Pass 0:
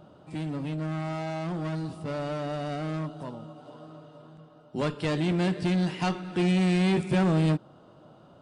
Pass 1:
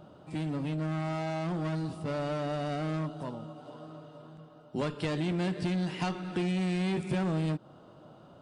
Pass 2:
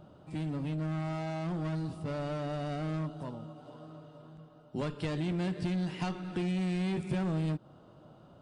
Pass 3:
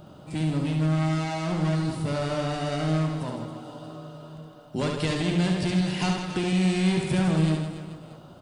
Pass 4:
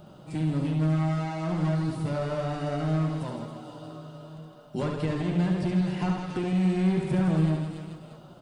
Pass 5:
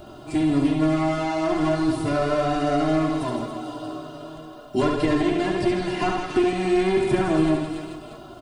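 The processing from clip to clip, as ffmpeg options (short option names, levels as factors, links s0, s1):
-af "acompressor=threshold=0.0398:ratio=6"
-af "lowshelf=f=120:g=8.5,volume=0.631"
-af "highshelf=f=3300:g=9.5,aecho=1:1:70|161|279.3|433.1|633:0.631|0.398|0.251|0.158|0.1,volume=2"
-filter_complex "[0:a]acrossover=split=1800[s0][s1];[s1]acompressor=threshold=0.00501:ratio=6[s2];[s0][s2]amix=inputs=2:normalize=0,flanger=delay=4.6:depth=3.2:regen=-48:speed=0.86:shape=triangular,volume=1.26"
-af "aecho=1:1:2.9:0.96,volume=2.11"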